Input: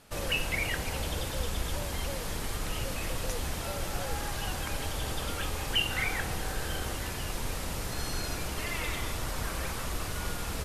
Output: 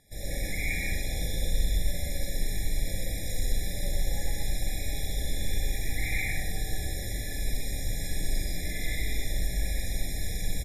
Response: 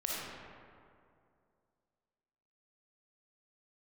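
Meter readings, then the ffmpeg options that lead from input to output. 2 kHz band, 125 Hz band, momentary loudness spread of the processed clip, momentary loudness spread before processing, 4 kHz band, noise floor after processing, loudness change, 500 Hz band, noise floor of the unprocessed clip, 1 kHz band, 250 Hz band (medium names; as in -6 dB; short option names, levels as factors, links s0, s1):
-1.5 dB, +2.5 dB, 4 LU, 6 LU, -3.5 dB, -34 dBFS, +0.5 dB, -4.0 dB, -36 dBFS, -11.5 dB, -0.5 dB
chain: -filter_complex "[0:a]equalizer=f=670:w=0.35:g=-11.5,aecho=1:1:125.4|166.2:0.891|0.501,volume=10.6,asoftclip=hard,volume=0.0944,aeval=exprs='val(0)+0.00447*sin(2*PI*1400*n/s)':c=same[s0];[1:a]atrim=start_sample=2205,afade=t=out:st=0.19:d=0.01,atrim=end_sample=8820,asetrate=40572,aresample=44100[s1];[s0][s1]afir=irnorm=-1:irlink=0,afftfilt=real='re*eq(mod(floor(b*sr/1024/830),2),0)':imag='im*eq(mod(floor(b*sr/1024/830),2),0)':win_size=1024:overlap=0.75"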